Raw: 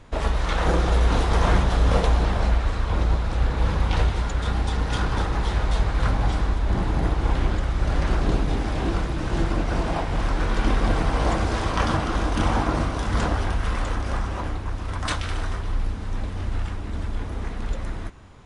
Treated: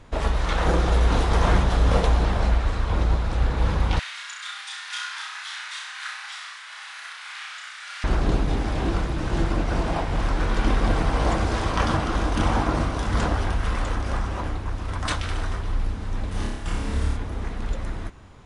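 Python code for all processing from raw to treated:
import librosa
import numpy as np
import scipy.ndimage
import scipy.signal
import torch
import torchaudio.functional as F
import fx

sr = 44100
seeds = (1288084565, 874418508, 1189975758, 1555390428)

y = fx.chain(x, sr, fx.highpass(hz=1500.0, slope=24),
    fx.room_flutter(wall_m=5.6, rt60_s=0.63), at=(3.99, 8.04))
y = fx.chain(y, sr, fx.high_shelf(hz=6500.0, db=11.0),
    fx.over_compress(threshold_db=-27.0, ratio=-0.5),
    fx.room_flutter(wall_m=5.0, rt60_s=0.84), at=(16.31, 17.17))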